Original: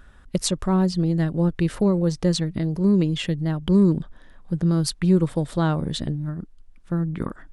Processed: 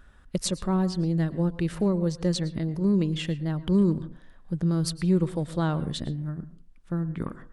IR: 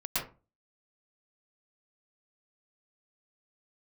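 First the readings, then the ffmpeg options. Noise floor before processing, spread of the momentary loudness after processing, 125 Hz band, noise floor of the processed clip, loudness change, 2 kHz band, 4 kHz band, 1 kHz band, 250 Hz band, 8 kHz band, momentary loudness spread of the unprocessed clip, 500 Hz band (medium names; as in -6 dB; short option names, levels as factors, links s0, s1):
-49 dBFS, 10 LU, -4.5 dB, -52 dBFS, -4.5 dB, -4.5 dB, -4.5 dB, -4.5 dB, -4.5 dB, -4.5 dB, 10 LU, -4.5 dB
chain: -filter_complex "[0:a]asplit=2[s0][s1];[1:a]atrim=start_sample=2205[s2];[s1][s2]afir=irnorm=-1:irlink=0,volume=0.0891[s3];[s0][s3]amix=inputs=2:normalize=0,volume=0.562"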